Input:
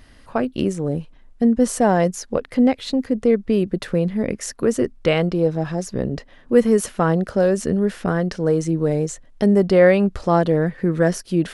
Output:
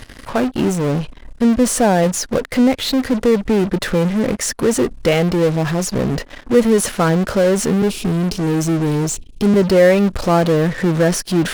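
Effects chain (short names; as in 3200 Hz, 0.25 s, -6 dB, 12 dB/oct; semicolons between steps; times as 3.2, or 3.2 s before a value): 7.82–9.54 Chebyshev band-stop 430–2400 Hz, order 5; in parallel at -9 dB: fuzz box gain 40 dB, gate -46 dBFS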